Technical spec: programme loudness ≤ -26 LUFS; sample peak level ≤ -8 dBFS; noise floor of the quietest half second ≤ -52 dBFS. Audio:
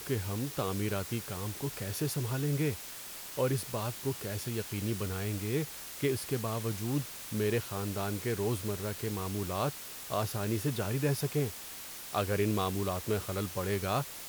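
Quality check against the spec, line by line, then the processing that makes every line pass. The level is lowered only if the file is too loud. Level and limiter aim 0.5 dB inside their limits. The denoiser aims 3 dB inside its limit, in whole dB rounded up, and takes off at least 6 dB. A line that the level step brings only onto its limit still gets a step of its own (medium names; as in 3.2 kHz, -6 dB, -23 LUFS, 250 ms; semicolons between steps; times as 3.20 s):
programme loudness -34.0 LUFS: pass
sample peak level -17.0 dBFS: pass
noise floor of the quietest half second -44 dBFS: fail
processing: noise reduction 11 dB, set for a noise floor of -44 dBFS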